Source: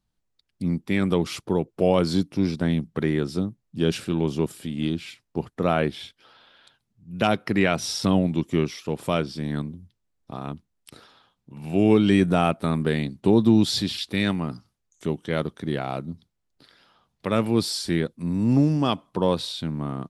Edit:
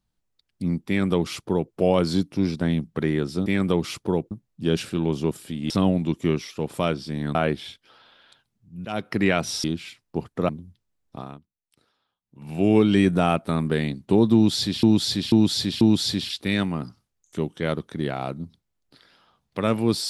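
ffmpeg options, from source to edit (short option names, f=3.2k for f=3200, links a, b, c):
-filter_complex "[0:a]asplit=13[a][b][c][d][e][f][g][h][i][j][k][l][m];[a]atrim=end=3.462[n];[b]atrim=start=0.878:end=1.732[o];[c]atrim=start=3.458:end=4.852[p];[d]atrim=start=7.988:end=9.642[q];[e]atrim=start=5.698:end=7.2,asetpts=PTS-STARTPTS,afade=t=out:st=1.498:d=0.004:c=hsin:silence=0.112202[r];[f]atrim=start=7.2:end=7.992,asetpts=PTS-STARTPTS,afade=t=in:d=0.27:silence=0.112202[s];[g]atrim=start=4.848:end=5.702[t];[h]atrim=start=9.638:end=10.55,asetpts=PTS-STARTPTS,afade=t=out:st=0.692:d=0.22:silence=0.125893[u];[i]atrim=start=10.55:end=11.4,asetpts=PTS-STARTPTS,volume=-18dB[v];[j]atrim=start=11.4:end=13.982,asetpts=PTS-STARTPTS,afade=t=in:d=0.22:silence=0.125893[w];[k]atrim=start=13.488:end=13.982[x];[l]atrim=start=13.488:end=13.982[y];[m]atrim=start=13.488[z];[n][o]acrossfade=d=0.004:c1=hsin:c2=hsin[aa];[aa][p]acrossfade=d=0.004:c1=hsin:c2=hsin[ab];[ab][q]acrossfade=d=0.004:c1=hsin:c2=hsin[ac];[r][s]concat=n=2:v=0:a=1[ad];[ac][ad]acrossfade=d=0.004:c1=hsin:c2=hsin[ae];[ae][t]acrossfade=d=0.004:c1=hsin:c2=hsin[af];[u][v][w]concat=n=3:v=0:a=1[ag];[af][ag]acrossfade=d=0.004:c1=hsin:c2=hsin[ah];[ah][x]acrossfade=d=0.004:c1=hsin:c2=hsin[ai];[ai][y]acrossfade=d=0.004:c1=hsin:c2=hsin[aj];[aj][z]acrossfade=d=0.004:c1=hsin:c2=hsin"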